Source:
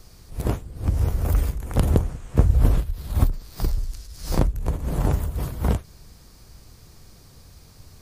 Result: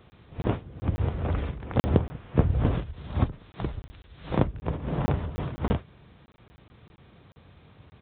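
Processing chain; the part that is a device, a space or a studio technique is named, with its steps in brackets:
call with lost packets (high-pass filter 100 Hz 12 dB per octave; downsampling to 8,000 Hz; dropped packets of 20 ms random)

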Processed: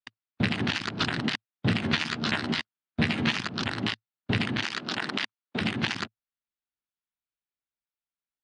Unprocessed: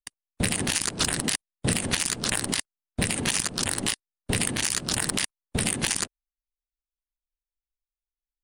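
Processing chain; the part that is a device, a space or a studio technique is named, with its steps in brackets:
0:04.61–0:05.61: high-pass filter 250 Hz 12 dB per octave
guitar cabinet (loudspeaker in its box 110–4,100 Hz, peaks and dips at 110 Hz +7 dB, 220 Hz +4 dB, 510 Hz −6 dB, 1,400 Hz +4 dB)
0:01.81–0:03.32: double-tracking delay 13 ms −5 dB

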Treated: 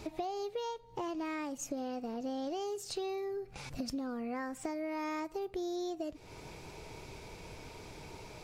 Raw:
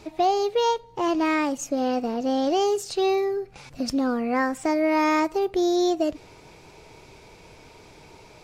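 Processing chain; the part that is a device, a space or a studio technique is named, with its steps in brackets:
ASMR close-microphone chain (low-shelf EQ 180 Hz +4.5 dB; downward compressor 6 to 1, threshold −35 dBFS, peak gain reduction 17 dB; high-shelf EQ 11,000 Hz +6 dB)
level −1.5 dB

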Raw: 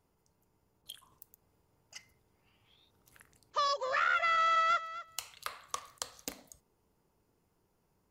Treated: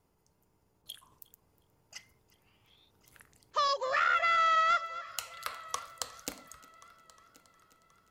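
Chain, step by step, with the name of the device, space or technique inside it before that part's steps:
multi-head tape echo (echo machine with several playback heads 360 ms, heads first and third, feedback 48%, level −23 dB; tape wow and flutter 25 cents)
level +2 dB

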